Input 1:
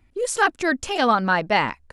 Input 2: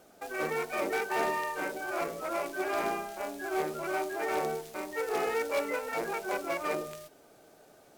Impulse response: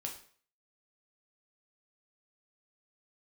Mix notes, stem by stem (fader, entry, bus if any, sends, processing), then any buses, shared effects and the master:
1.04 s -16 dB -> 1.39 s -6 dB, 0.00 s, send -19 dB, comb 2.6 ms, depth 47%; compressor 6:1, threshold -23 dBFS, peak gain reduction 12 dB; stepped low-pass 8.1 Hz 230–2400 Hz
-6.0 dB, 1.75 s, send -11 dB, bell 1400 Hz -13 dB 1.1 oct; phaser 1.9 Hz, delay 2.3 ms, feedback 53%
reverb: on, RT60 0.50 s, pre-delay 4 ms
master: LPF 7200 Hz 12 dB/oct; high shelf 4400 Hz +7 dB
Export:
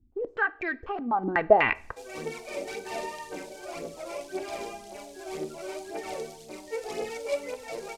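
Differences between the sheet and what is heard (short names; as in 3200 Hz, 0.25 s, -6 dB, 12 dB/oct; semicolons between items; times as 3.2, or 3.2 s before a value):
stem 1 -16.0 dB -> -9.5 dB; reverb return +8.0 dB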